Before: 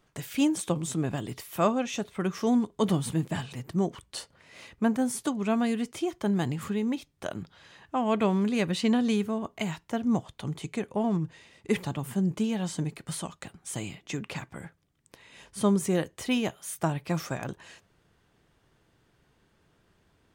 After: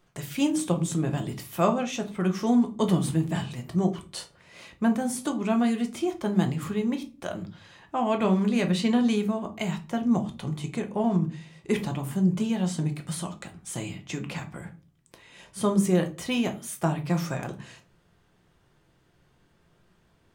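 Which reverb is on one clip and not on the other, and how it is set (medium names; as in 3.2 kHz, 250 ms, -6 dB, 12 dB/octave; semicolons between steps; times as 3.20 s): simulated room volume 200 m³, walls furnished, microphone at 0.89 m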